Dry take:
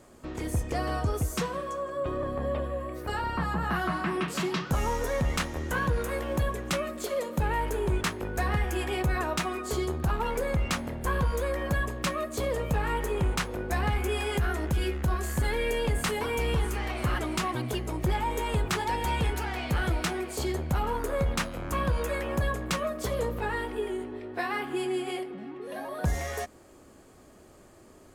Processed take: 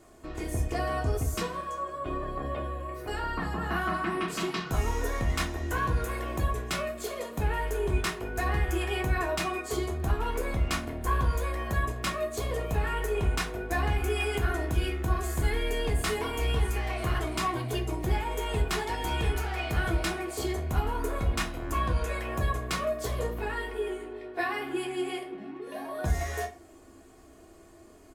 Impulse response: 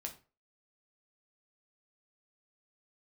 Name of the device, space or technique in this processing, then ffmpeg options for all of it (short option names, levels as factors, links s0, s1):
microphone above a desk: -filter_complex "[0:a]asettb=1/sr,asplit=3[s0][s1][s2];[s0]atrim=end=21.784[s3];[s1]atrim=start=21.78:end=22.2,asetpts=PTS-STARTPTS,afade=t=in:d=0.004:c=qsin,afade=t=out:st=0.416:d=0.004:c=qsin,lowpass=11000[s4];[s2]atrim=start=22.196[s5];[s3][s4]acrossfade=d=0.004:c1=hsin:c2=qsin[s6];[s6][s5]acrossfade=d=0.004:c1=qsin:c2=hsin,aecho=1:1:2.8:0.52[s7];[1:a]atrim=start_sample=2205[s8];[s7][s8]afir=irnorm=-1:irlink=0,volume=1.12"